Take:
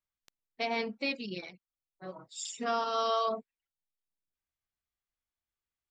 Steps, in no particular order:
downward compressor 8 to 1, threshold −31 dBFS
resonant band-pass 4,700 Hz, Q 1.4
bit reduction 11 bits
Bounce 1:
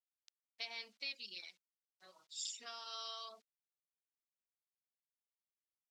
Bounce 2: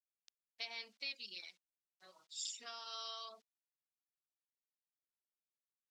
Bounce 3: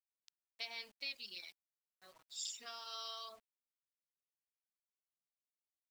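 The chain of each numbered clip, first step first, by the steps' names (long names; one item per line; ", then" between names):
downward compressor, then bit reduction, then resonant band-pass
bit reduction, then downward compressor, then resonant band-pass
downward compressor, then resonant band-pass, then bit reduction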